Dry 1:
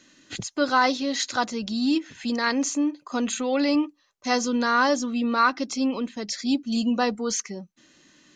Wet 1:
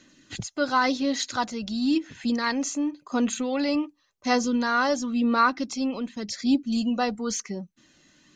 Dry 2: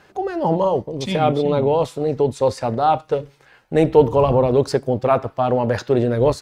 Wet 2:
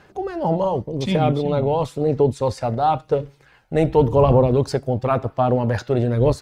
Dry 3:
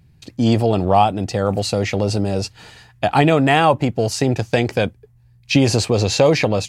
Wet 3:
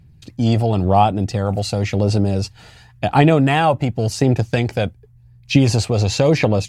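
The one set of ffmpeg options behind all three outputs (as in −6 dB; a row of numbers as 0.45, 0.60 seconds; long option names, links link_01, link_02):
-af "lowshelf=frequency=200:gain=5.5,aphaser=in_gain=1:out_gain=1:delay=1.5:decay=0.31:speed=0.93:type=sinusoidal,volume=-3dB"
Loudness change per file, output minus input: −1.0, −1.0, 0.0 LU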